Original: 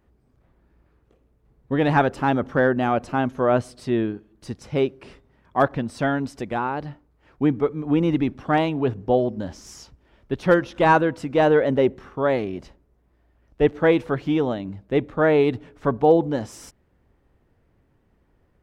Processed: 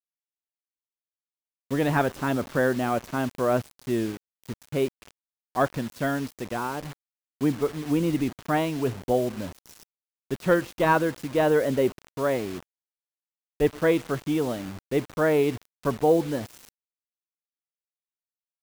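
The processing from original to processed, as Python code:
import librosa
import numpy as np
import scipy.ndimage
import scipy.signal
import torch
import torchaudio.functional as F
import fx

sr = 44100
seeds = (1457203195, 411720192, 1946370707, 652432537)

y = fx.notch(x, sr, hz=820.0, q=12.0)
y = fx.quant_dither(y, sr, seeds[0], bits=6, dither='none')
y = F.gain(torch.from_numpy(y), -4.0).numpy()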